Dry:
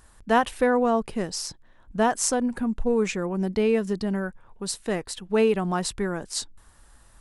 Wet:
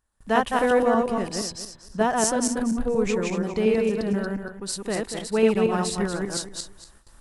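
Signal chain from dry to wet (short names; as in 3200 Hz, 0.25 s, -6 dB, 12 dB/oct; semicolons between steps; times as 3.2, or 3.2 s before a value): regenerating reverse delay 0.118 s, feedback 46%, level -1.5 dB; gate with hold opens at -40 dBFS; gain -1.5 dB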